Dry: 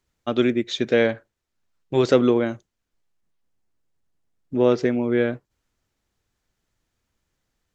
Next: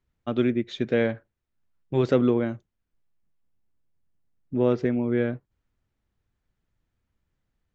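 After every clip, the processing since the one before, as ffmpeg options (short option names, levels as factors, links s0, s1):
-af "bass=f=250:g=7,treble=f=4000:g=-10,volume=0.531"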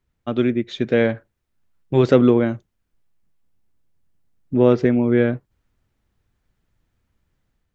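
-af "dynaudnorm=f=680:g=3:m=1.58,volume=1.5"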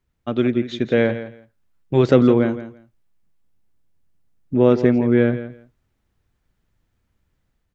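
-af "aecho=1:1:167|334:0.224|0.0381"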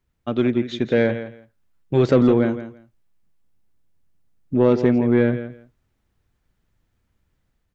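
-af "asoftclip=type=tanh:threshold=0.501"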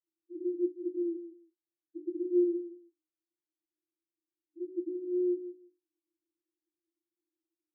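-af "asuperpass=centerf=330:order=20:qfactor=5.8,volume=0.708"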